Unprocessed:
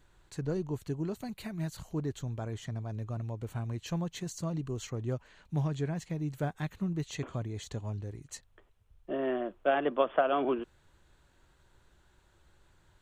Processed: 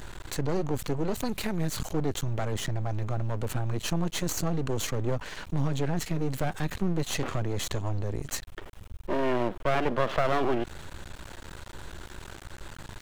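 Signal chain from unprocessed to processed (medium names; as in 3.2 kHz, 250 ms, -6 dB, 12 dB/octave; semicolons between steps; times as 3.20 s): in parallel at +1 dB: peak limiter -25 dBFS, peak gain reduction 10.5 dB; on the sum: half-wave rectifier; level flattener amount 50%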